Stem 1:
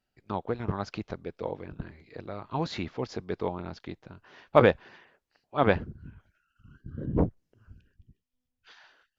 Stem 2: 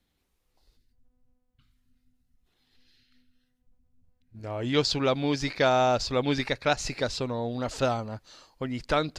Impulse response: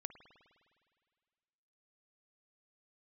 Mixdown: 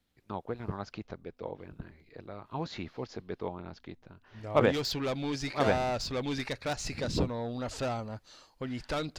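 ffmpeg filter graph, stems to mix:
-filter_complex "[0:a]asoftclip=type=hard:threshold=0.447,volume=0.531[s0];[1:a]asoftclip=type=tanh:threshold=0.0596,volume=0.708[s1];[s0][s1]amix=inputs=2:normalize=0"

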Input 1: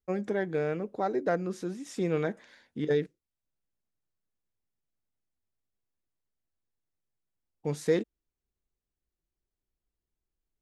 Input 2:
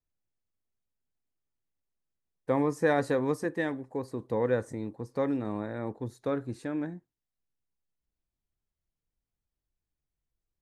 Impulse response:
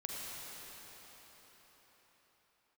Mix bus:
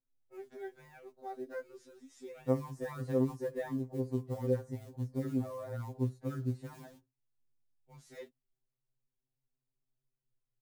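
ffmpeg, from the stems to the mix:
-filter_complex "[0:a]adelay=250,volume=0.211[s0];[1:a]tiltshelf=f=920:g=7,acompressor=threshold=0.0562:ratio=4,volume=0.668,asplit=2[s1][s2];[s2]apad=whole_len=479220[s3];[s0][s3]sidechaincompress=threshold=0.00355:ratio=4:attack=16:release=1070[s4];[s4][s1]amix=inputs=2:normalize=0,acrusher=bits=7:mode=log:mix=0:aa=0.000001,afftfilt=real='re*2.45*eq(mod(b,6),0)':imag='im*2.45*eq(mod(b,6),0)':win_size=2048:overlap=0.75"

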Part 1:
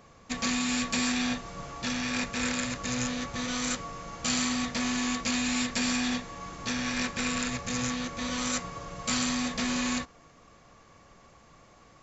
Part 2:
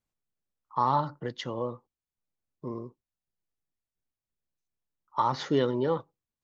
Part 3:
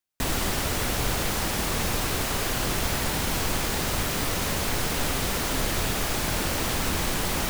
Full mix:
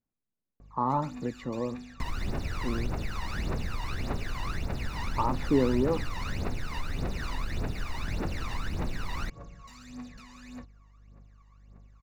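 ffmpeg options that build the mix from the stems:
-filter_complex "[0:a]acompressor=threshold=0.0282:ratio=6,aeval=exprs='val(0)+0.00355*(sin(2*PI*50*n/s)+sin(2*PI*2*50*n/s)/2+sin(2*PI*3*50*n/s)/3+sin(2*PI*4*50*n/s)/4+sin(2*PI*5*50*n/s)/5)':c=same,volume=42.2,asoftclip=hard,volume=0.0237,adelay=600,volume=0.178[s0];[1:a]lowpass=f=1300:p=1,equalizer=f=240:t=o:w=0.77:g=7.5,volume=0.841[s1];[2:a]adelay=1800,volume=0.422[s2];[s0][s2]amix=inputs=2:normalize=0,aphaser=in_gain=1:out_gain=1:delay=1.1:decay=0.79:speed=1.7:type=triangular,acompressor=threshold=0.0447:ratio=6,volume=1[s3];[s1][s3]amix=inputs=2:normalize=0,acrossover=split=5600[s4][s5];[s5]acompressor=threshold=0.00316:ratio=4:attack=1:release=60[s6];[s4][s6]amix=inputs=2:normalize=0,asuperstop=centerf=3200:order=4:qfactor=7.6,highshelf=f=5600:g=-10.5"

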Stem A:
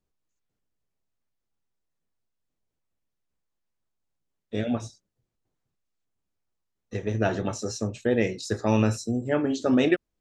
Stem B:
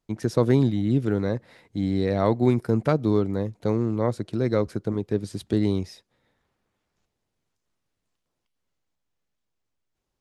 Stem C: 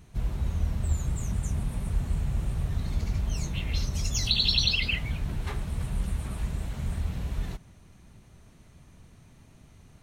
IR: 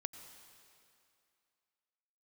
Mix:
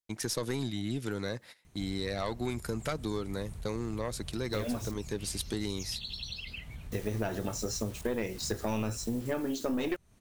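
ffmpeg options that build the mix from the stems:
-filter_complex "[0:a]acrusher=bits=7:mix=0:aa=0.000001,volume=1.12[s0];[1:a]agate=range=0.126:threshold=0.00708:ratio=16:detection=peak,tiltshelf=f=1200:g=-8,volume=1.06[s1];[2:a]acompressor=threshold=0.02:ratio=3,adelay=1650,volume=0.501[s2];[s0][s1][s2]amix=inputs=3:normalize=0,highshelf=f=7400:g=8,aeval=exprs='(tanh(5.01*val(0)+0.45)-tanh(0.45))/5.01':c=same,acompressor=threshold=0.0316:ratio=4"

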